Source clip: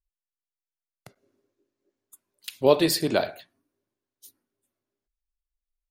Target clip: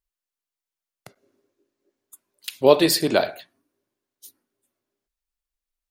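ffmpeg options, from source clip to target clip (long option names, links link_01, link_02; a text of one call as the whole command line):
ffmpeg -i in.wav -af "lowshelf=frequency=130:gain=-8,volume=4.5dB" out.wav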